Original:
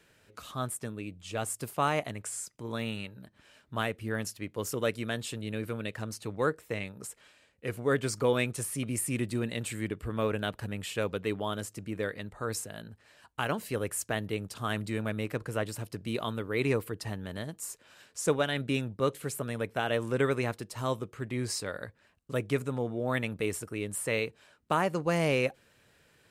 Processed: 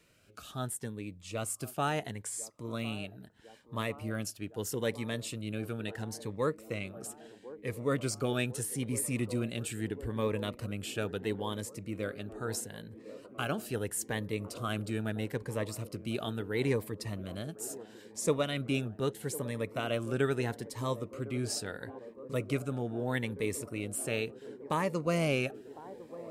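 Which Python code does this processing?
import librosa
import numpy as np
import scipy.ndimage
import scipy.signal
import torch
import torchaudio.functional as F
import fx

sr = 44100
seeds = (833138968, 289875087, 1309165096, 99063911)

y = fx.echo_wet_bandpass(x, sr, ms=1054, feedback_pct=79, hz=490.0, wet_db=-14.5)
y = fx.notch_cascade(y, sr, direction='rising', hz=0.76)
y = y * librosa.db_to_amplitude(-1.0)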